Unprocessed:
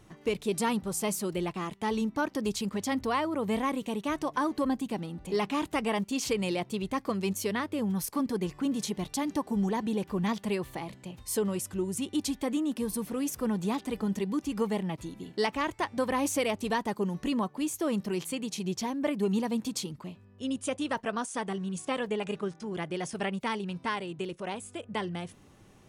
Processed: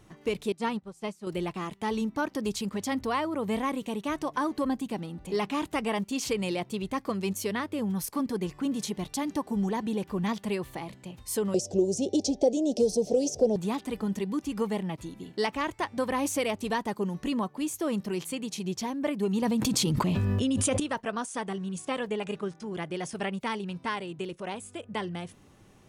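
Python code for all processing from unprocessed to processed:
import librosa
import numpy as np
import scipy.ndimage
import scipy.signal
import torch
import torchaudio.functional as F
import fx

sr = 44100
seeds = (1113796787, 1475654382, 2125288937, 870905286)

y = fx.chain(x, sr, fx.air_absorb(metres=54.0),
    fx.upward_expand(threshold_db=-39.0, expansion=2.5), at=(0.52, 1.27))
y = fx.chain(y, sr, fx.curve_eq(hz=(300.0, 420.0, 690.0, 1200.0, 2000.0, 3800.0, 5800.0, 13000.0), db=(0, 12, 14, -28, -17, -2, 11, -21)),
    fx.band_squash(depth_pct=70), at=(11.54, 13.56))
y = fx.chain(y, sr, fx.low_shelf(hz=170.0, db=5.0),
    fx.env_flatten(amount_pct=100), at=(19.42, 20.8))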